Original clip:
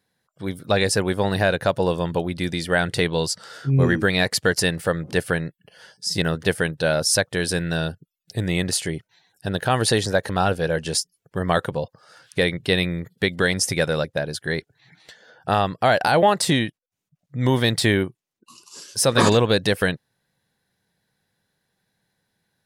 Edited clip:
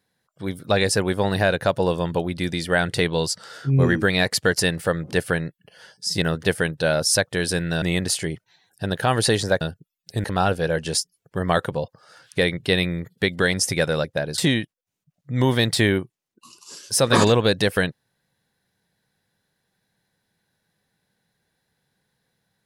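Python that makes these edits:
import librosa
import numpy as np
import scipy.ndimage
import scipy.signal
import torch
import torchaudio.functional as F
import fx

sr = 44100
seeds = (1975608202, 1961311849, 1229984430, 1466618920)

y = fx.edit(x, sr, fx.move(start_s=7.82, length_s=0.63, to_s=10.24),
    fx.cut(start_s=14.38, length_s=2.05), tone=tone)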